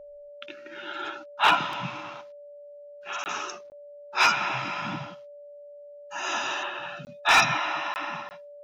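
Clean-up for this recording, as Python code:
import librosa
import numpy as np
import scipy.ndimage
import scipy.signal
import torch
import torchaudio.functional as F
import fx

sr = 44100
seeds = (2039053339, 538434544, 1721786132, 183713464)

y = fx.fix_declip(x, sr, threshold_db=-12.0)
y = fx.notch(y, sr, hz=580.0, q=30.0)
y = fx.fix_interpolate(y, sr, at_s=(3.24, 3.7, 7.05, 7.94, 8.29), length_ms=19.0)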